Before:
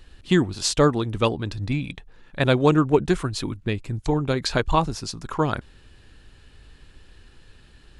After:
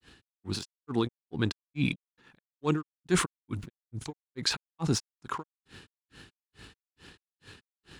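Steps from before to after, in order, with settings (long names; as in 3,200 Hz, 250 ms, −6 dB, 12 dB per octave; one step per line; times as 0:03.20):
high-pass filter 130 Hz 12 dB per octave
parametric band 600 Hz −7.5 dB 0.49 octaves
reversed playback
downward compressor 12 to 1, threshold −31 dBFS, peak gain reduction 18 dB
reversed playback
granular cloud 221 ms, grains 2.3 per second, spray 12 ms, pitch spread up and down by 0 semitones
in parallel at −4 dB: dead-zone distortion −59 dBFS
on the sum: level that may fall only so fast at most 100 dB per second
level +5.5 dB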